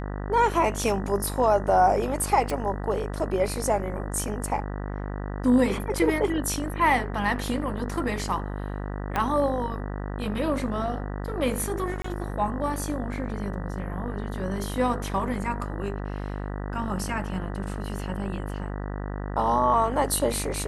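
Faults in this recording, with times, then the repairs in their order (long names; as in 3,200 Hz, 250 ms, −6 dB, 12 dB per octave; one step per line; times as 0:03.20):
mains buzz 50 Hz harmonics 39 −32 dBFS
0:02.50: click
0:09.16: click −13 dBFS
0:12.02–0:12.04: drop-out 24 ms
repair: click removal
hum removal 50 Hz, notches 39
repair the gap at 0:12.02, 24 ms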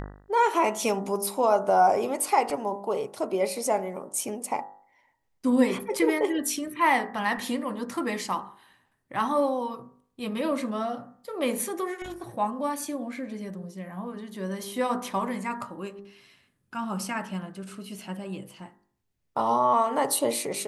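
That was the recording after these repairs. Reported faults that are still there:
0:09.16: click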